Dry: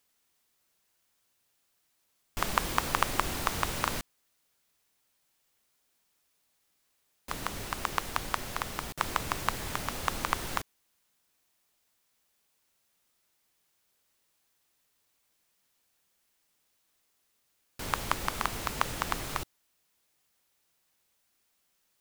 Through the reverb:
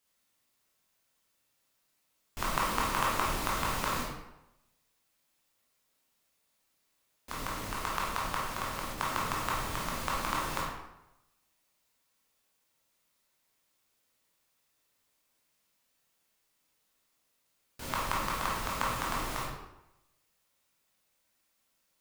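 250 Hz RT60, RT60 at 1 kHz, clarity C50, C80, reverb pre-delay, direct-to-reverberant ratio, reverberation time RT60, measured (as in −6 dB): 0.80 s, 0.90 s, 0.5 dB, 4.5 dB, 15 ms, −5.0 dB, 0.90 s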